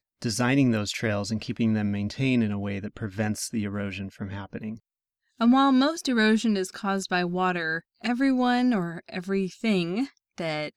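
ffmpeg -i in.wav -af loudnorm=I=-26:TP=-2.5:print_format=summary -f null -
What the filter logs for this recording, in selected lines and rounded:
Input Integrated:    -26.2 LUFS
Input True Peak:     -11.1 dBTP
Input LRA:             3.6 LU
Input Threshold:     -36.4 LUFS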